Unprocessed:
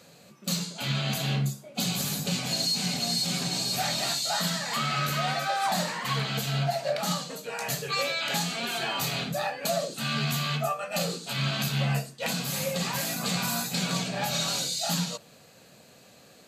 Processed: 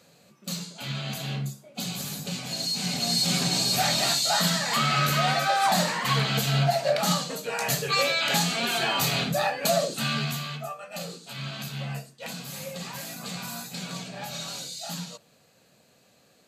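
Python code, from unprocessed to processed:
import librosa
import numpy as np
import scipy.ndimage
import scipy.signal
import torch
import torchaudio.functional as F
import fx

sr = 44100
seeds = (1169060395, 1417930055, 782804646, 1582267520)

y = fx.gain(x, sr, db=fx.line((2.49, -4.0), (3.3, 4.5), (9.97, 4.5), (10.57, -7.0)))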